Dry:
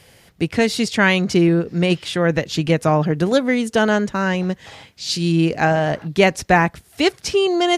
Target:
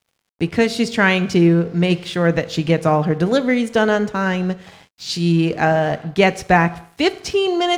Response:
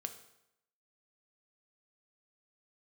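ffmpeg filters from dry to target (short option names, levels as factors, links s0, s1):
-filter_complex "[0:a]asplit=2[s0][s1];[1:a]atrim=start_sample=2205[s2];[s1][s2]afir=irnorm=-1:irlink=0,volume=1.41[s3];[s0][s3]amix=inputs=2:normalize=0,aeval=exprs='sgn(val(0))*max(abs(val(0))-0.0141,0)':c=same,highshelf=f=6100:g=-6.5,volume=0.531"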